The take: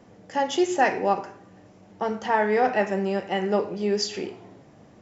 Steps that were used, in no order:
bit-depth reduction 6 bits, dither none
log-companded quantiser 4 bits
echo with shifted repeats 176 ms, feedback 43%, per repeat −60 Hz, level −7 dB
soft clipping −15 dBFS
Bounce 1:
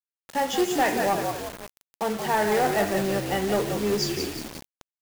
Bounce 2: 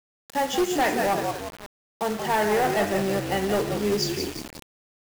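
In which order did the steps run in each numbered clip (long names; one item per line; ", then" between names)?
log-companded quantiser, then echo with shifted repeats, then bit-depth reduction, then soft clipping
echo with shifted repeats, then soft clipping, then log-companded quantiser, then bit-depth reduction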